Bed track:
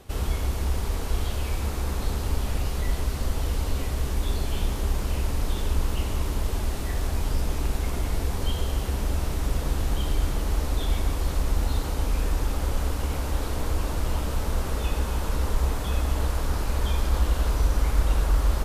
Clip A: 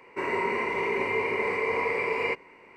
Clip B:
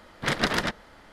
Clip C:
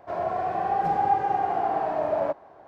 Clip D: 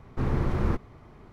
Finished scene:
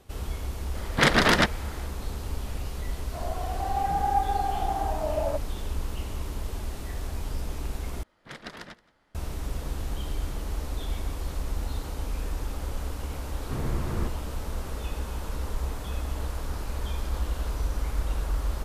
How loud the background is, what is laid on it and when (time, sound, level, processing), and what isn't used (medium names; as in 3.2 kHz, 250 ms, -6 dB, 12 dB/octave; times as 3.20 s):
bed track -6.5 dB
0.75 s: add B -5 dB + loudness maximiser +12.5 dB
3.05 s: add C -2.5 dB + spectral noise reduction 6 dB
8.03 s: replace with B -16.5 dB + delay 174 ms -22 dB
13.32 s: add D -5 dB
not used: A